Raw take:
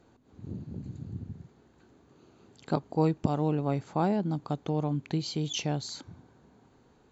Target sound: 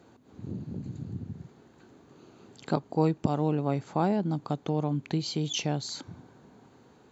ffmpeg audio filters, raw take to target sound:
-filter_complex "[0:a]highpass=97,asplit=2[a][b];[b]acompressor=threshold=-41dB:ratio=6,volume=-2dB[c];[a][c]amix=inputs=2:normalize=0"

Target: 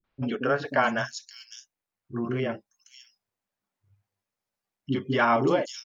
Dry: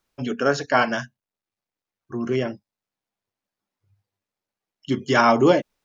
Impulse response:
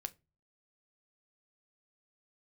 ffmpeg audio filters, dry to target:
-filter_complex "[0:a]acompressor=threshold=-21dB:ratio=2,acrossover=split=340|3900[a][b][c];[b]adelay=40[d];[c]adelay=590[e];[a][d][e]amix=inputs=3:normalize=0"

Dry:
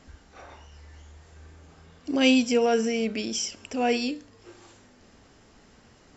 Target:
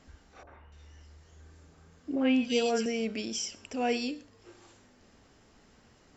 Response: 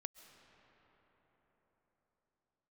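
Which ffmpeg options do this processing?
-filter_complex "[0:a]asettb=1/sr,asplit=3[a][b][c];[a]atrim=end=0.434[d];[b]atrim=start=0.43:end=2.86,asetpts=PTS-STARTPTS,afade=t=in:d=0.004:c=qsin,afade=t=out:st=2.426:d=0.004:c=qsin,acrossover=split=780|2600[e][f][g];[f]adelay=40[h];[g]adelay=290[i];[e][h][i]amix=inputs=3:normalize=0,atrim=end_sample=107163[j];[c]atrim=start=2.856[k];[d][j]acrossfade=d=0.004:c1=hsin:c2=qsin[l];[l][k]acrossfade=d=0.004:c1=qsin:c2=hsin[m];[1:a]atrim=start_sample=2205,afade=t=out:st=0.18:d=0.01,atrim=end_sample=8379[n];[m][n]afir=irnorm=-1:irlink=0"

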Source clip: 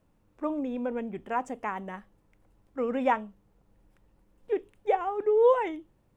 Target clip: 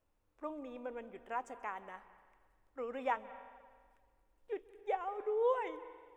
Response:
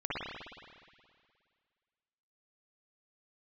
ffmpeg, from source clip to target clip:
-filter_complex "[0:a]equalizer=f=170:t=o:w=1.6:g=-14.5,asplit=2[a][b];[1:a]atrim=start_sample=2205,asetrate=52920,aresample=44100,adelay=134[c];[b][c]afir=irnorm=-1:irlink=0,volume=-20dB[d];[a][d]amix=inputs=2:normalize=0,volume=-8dB"

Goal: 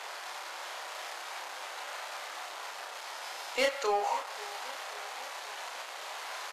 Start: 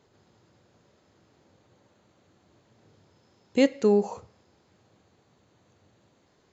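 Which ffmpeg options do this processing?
-filter_complex "[0:a]aeval=exprs='val(0)+0.5*0.0141*sgn(val(0))':c=same,highpass=f=720:w=0.5412,highpass=f=720:w=1.3066,highshelf=f=5.9k:g=-11.5,asoftclip=type=hard:threshold=-29.5dB,asplit=2[a][b];[b]adelay=31,volume=-3dB[c];[a][c]amix=inputs=2:normalize=0,aecho=1:1:535|1070|1605|2140|2675:0.119|0.0689|0.04|0.0232|0.0134,volume=5.5dB" -ar 32000 -c:a libvorbis -b:a 64k

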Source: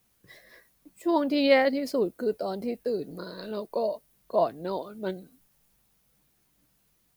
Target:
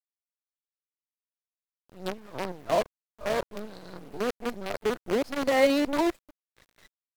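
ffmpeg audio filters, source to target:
-af "areverse,acrusher=bits=5:dc=4:mix=0:aa=0.000001,aemphasis=mode=reproduction:type=cd,volume=-1.5dB"

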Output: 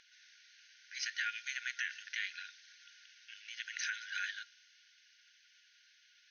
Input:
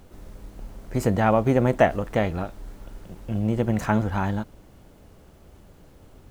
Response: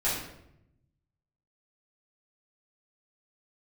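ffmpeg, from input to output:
-filter_complex "[0:a]equalizer=f=4.3k:t=o:w=2.4:g=6.5,asplit=2[a][b];[1:a]atrim=start_sample=2205[c];[b][c]afir=irnorm=-1:irlink=0,volume=-31.5dB[d];[a][d]amix=inputs=2:normalize=0,aphaser=in_gain=1:out_gain=1:delay=3.5:decay=0.21:speed=0.77:type=triangular,afftfilt=real='re*between(b*sr/4096,1400,6500)':imag='im*between(b*sr/4096,1400,6500)':win_size=4096:overlap=0.75,alimiter=limit=-21dB:level=0:latency=1:release=80,adynamicequalizer=threshold=0.00447:dfrequency=3300:dqfactor=0.7:tfrequency=3300:tqfactor=0.7:attack=5:release=100:ratio=0.375:range=2:mode=boostabove:tftype=highshelf,volume=-4.5dB"

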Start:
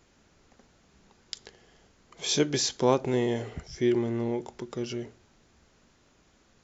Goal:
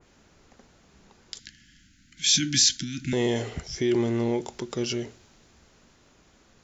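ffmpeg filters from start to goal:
-filter_complex "[0:a]alimiter=limit=-19.5dB:level=0:latency=1:release=17,asettb=1/sr,asplit=3[a][b][c];[a]atrim=end=1.394[d];[b]atrim=start=1.39:end=3.13,asetpts=PTS-STARTPTS,afade=t=in:d=0.004:c=qsin,afade=t=out:st=1.736:d=0.004:c=qsin,asuperstop=centerf=670:order=20:qfactor=0.6[e];[c]atrim=start=3.126[f];[d][e]acrossfade=d=0.004:c1=hsin:c2=qsin[g];[g][f]acrossfade=d=0.004:c1=qsin:c2=hsin,adynamicequalizer=threshold=0.00282:dfrequency=2400:dqfactor=0.7:tfrequency=2400:tqfactor=0.7:attack=5:release=100:ratio=0.375:range=3.5:mode=boostabove:tftype=highshelf,volume=4dB"

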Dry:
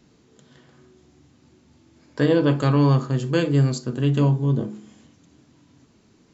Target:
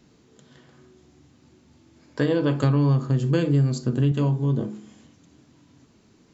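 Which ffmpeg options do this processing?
-filter_complex "[0:a]asettb=1/sr,asplit=3[a][b][c];[a]atrim=end=2.634[d];[b]atrim=start=2.63:end=4.12,asetpts=PTS-STARTPTS,afade=t=in:d=0.004:c=qsin,afade=t=out:st=1.486:d=0.004:c=qsin,lowshelf=f=320:g=8[e];[c]atrim=start=4.116[f];[d][e]acrossfade=d=0.004:c1=hsin:c2=qsin[g];[g][f]acrossfade=d=0.004:c1=qsin:c2=hsin,acompressor=threshold=-18dB:ratio=4"

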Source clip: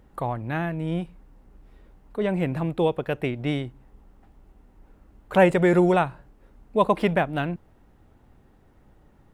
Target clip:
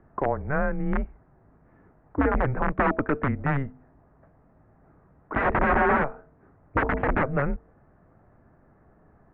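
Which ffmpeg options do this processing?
-af "bandreject=f=197.1:t=h:w=4,bandreject=f=394.2:t=h:w=4,bandreject=f=591.3:t=h:w=4,bandreject=f=788.4:t=h:w=4,aeval=exprs='(mod(7.94*val(0)+1,2)-1)/7.94':c=same,highpass=f=160:t=q:w=0.5412,highpass=f=160:t=q:w=1.307,lowpass=f=2k:t=q:w=0.5176,lowpass=f=2k:t=q:w=0.7071,lowpass=f=2k:t=q:w=1.932,afreqshift=-140,volume=4dB"

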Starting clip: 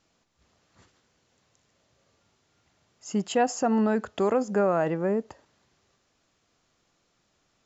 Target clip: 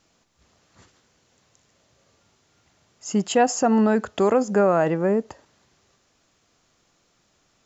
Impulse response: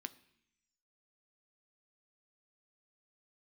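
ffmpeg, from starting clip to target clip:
-af "equalizer=f=6.7k:t=o:w=0.77:g=2.5,volume=5dB"

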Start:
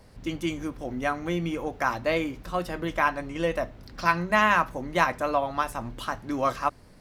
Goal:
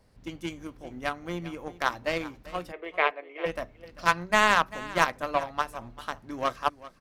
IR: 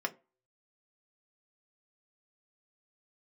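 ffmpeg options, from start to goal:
-filter_complex "[0:a]aeval=exprs='0.501*(cos(1*acos(clip(val(0)/0.501,-1,1)))-cos(1*PI/2))+0.00794*(cos(5*acos(clip(val(0)/0.501,-1,1)))-cos(5*PI/2))+0.0562*(cos(7*acos(clip(val(0)/0.501,-1,1)))-cos(7*PI/2))':c=same,asplit=3[a][b][c];[a]afade=t=out:st=2.71:d=0.02[d];[b]highpass=f=390:w=0.5412,highpass=f=390:w=1.3066,equalizer=f=420:t=q:w=4:g=9,equalizer=f=660:t=q:w=4:g=4,equalizer=f=940:t=q:w=4:g=-4,equalizer=f=1.5k:t=q:w=4:g=-6,equalizer=f=2.2k:t=q:w=4:g=8,lowpass=f=3.1k:w=0.5412,lowpass=f=3.1k:w=1.3066,afade=t=in:st=2.71:d=0.02,afade=t=out:st=3.45:d=0.02[e];[c]afade=t=in:st=3.45:d=0.02[f];[d][e][f]amix=inputs=3:normalize=0,aecho=1:1:393:0.133,volume=1dB"

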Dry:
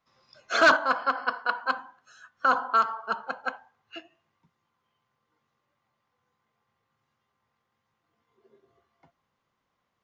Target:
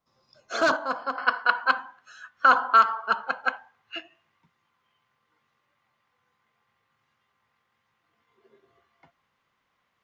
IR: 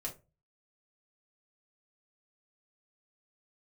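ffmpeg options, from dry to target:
-af "asetnsamples=n=441:p=0,asendcmd='1.18 equalizer g 8',equalizer=f=2.2k:t=o:w=2.1:g=-7.5"

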